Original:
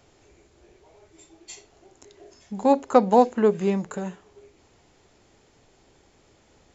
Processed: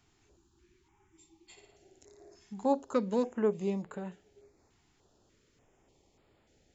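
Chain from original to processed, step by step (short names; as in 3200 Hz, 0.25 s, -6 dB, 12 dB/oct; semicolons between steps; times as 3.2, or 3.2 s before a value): 0.37–1.5 spectral delete 390–780 Hz; 1.52–2.54 flutter echo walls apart 9.6 m, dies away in 0.69 s; stepped notch 3.4 Hz 550–6000 Hz; gain -9 dB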